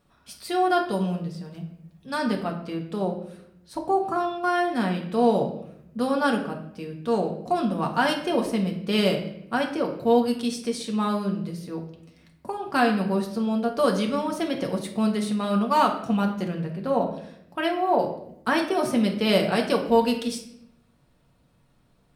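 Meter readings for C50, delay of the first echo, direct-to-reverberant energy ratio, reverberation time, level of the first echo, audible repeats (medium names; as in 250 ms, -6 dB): 8.5 dB, no echo, 1.0 dB, 0.75 s, no echo, no echo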